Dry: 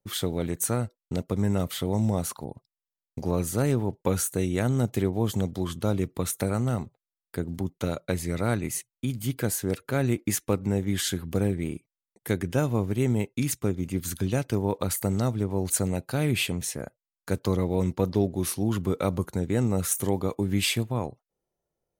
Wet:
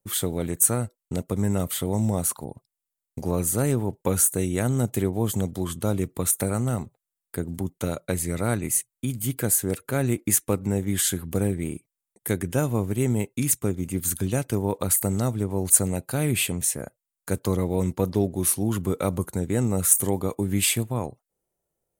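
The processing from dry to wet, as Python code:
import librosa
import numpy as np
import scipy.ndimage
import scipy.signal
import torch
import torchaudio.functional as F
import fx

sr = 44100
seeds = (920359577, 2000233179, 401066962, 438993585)

y = fx.high_shelf_res(x, sr, hz=6600.0, db=7.0, q=1.5)
y = F.gain(torch.from_numpy(y), 1.0).numpy()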